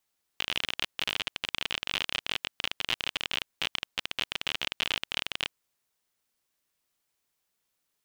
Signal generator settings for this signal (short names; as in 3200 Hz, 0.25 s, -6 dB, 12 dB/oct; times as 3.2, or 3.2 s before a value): random clicks 36/s -12 dBFS 5.14 s